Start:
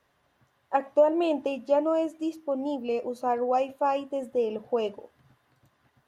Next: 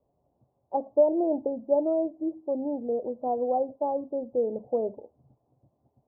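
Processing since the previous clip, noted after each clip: steep low-pass 780 Hz 36 dB/octave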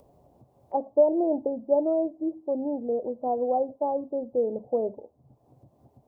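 upward compressor, threshold -47 dBFS; trim +1 dB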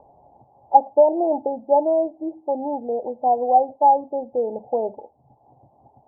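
resonant low-pass 840 Hz, resonance Q 8.2; trim -1 dB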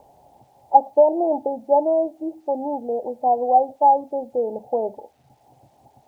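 bit crusher 11-bit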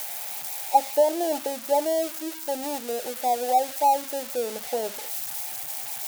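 zero-crossing glitches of -14.5 dBFS; trim -5.5 dB

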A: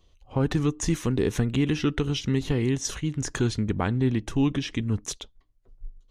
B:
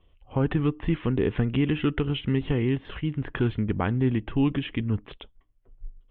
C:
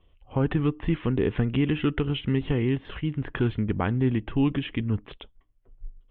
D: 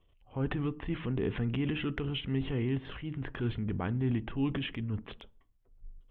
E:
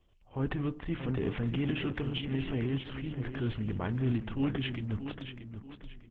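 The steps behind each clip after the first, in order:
steep low-pass 3.3 kHz 72 dB/octave
no audible change
transient shaper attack -5 dB, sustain +6 dB; on a send at -19.5 dB: reverberation RT60 0.45 s, pre-delay 3 ms; on the sum: trim -7 dB
on a send: feedback delay 630 ms, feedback 34%, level -9 dB; on the sum: Opus 10 kbps 48 kHz

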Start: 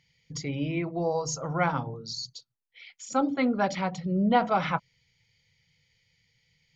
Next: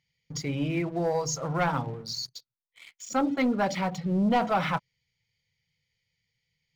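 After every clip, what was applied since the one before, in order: waveshaping leveller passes 2; trim -6 dB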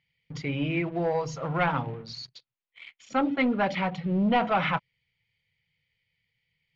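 resonant low-pass 2.8 kHz, resonance Q 1.7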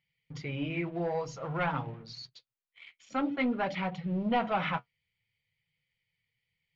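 flange 0.51 Hz, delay 5.3 ms, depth 6.9 ms, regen -47%; trim -1.5 dB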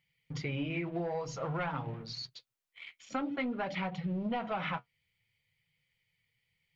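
compression 10:1, threshold -35 dBFS, peak gain reduction 11.5 dB; trim +3.5 dB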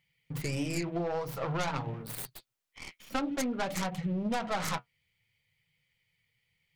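tracing distortion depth 0.39 ms; trim +2.5 dB

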